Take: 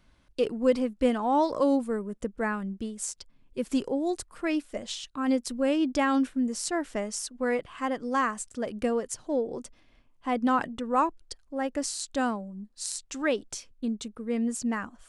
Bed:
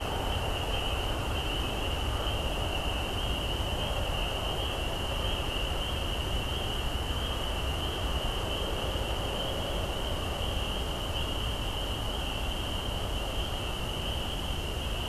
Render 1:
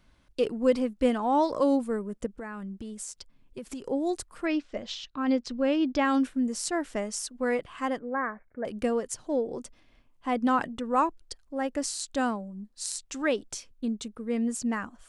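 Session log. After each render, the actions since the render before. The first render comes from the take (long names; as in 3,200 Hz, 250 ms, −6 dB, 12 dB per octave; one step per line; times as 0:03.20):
0:02.26–0:03.88: downward compressor 10 to 1, threshold −34 dBFS
0:04.46–0:06.05: low-pass filter 5,500 Hz 24 dB per octave
0:07.99–0:08.65: Chebyshev low-pass with heavy ripple 2,300 Hz, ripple 6 dB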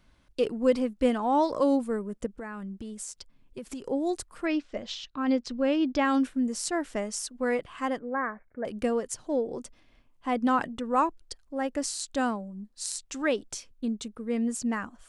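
no processing that can be heard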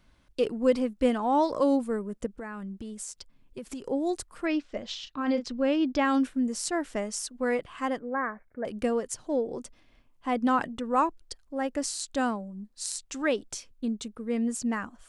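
0:04.99–0:05.47: double-tracking delay 36 ms −9 dB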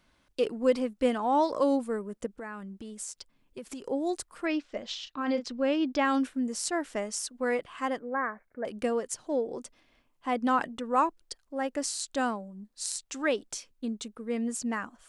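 low-shelf EQ 160 Hz −10.5 dB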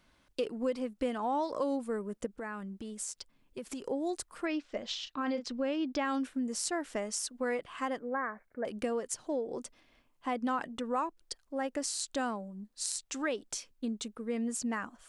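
downward compressor 3 to 1, threshold −31 dBFS, peak gain reduction 10 dB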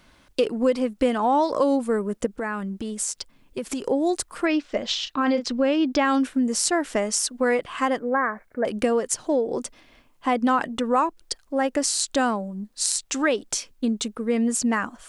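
level +11.5 dB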